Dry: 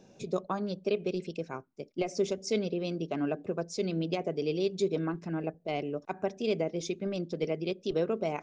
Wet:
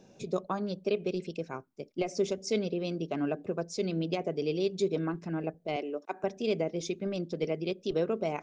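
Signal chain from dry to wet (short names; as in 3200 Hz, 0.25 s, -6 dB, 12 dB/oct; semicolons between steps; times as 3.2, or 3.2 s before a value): 5.76–6.24 HPF 270 Hz 24 dB/oct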